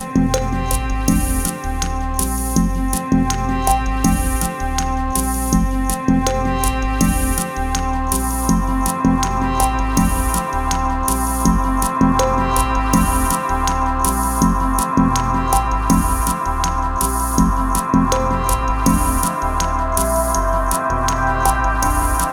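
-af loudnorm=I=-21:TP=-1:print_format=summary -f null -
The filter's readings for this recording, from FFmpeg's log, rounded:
Input Integrated:    -17.9 LUFS
Input True Peak:      -1.2 dBTP
Input LRA:             1.7 LU
Input Threshold:     -27.9 LUFS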